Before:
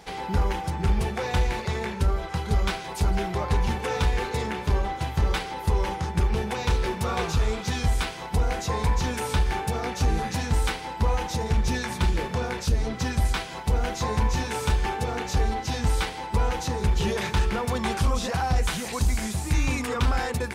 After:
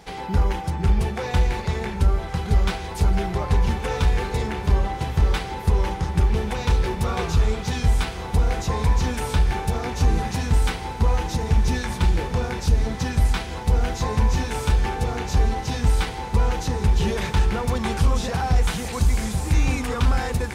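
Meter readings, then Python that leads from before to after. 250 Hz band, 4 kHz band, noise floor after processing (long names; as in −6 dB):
+3.0 dB, +0.5 dB, −32 dBFS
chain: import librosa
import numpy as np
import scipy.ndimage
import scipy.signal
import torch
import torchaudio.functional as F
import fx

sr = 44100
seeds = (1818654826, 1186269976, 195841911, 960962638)

y = fx.low_shelf(x, sr, hz=240.0, db=4.5)
y = fx.echo_diffused(y, sr, ms=1239, feedback_pct=60, wet_db=-12)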